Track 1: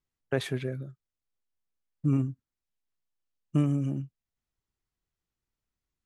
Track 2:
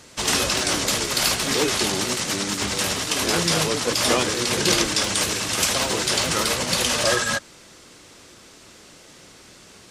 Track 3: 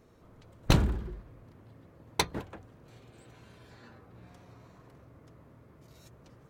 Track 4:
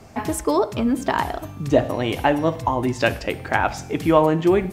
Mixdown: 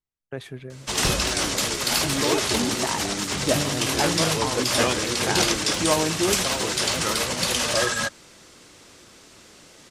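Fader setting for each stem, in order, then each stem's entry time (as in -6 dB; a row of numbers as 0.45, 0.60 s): -5.5, -2.0, -4.0, -7.5 dB; 0.00, 0.70, 0.35, 1.75 s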